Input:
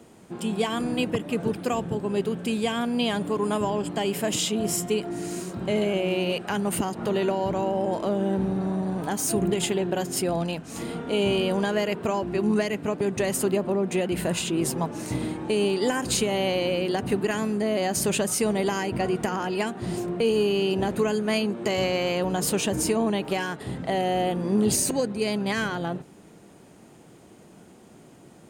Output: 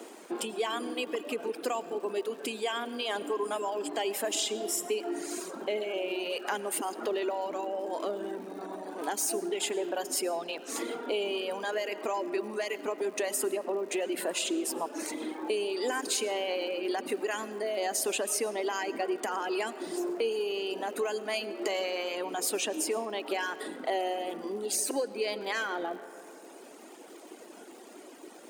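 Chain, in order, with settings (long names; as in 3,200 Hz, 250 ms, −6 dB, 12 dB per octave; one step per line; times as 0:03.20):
in parallel at +2.5 dB: brickwall limiter −21.5 dBFS, peak gain reduction 9 dB
on the sum: downward compressor 2.5 to 1, threshold −30 dBFS, peak gain reduction 10.5 dB
reverb reduction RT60 1.9 s
on a send at −13 dB: convolution reverb RT60 3.3 s, pre-delay 65 ms
on the sum: surface crackle 220 per second −46 dBFS
Butterworth high-pass 280 Hz 36 dB per octave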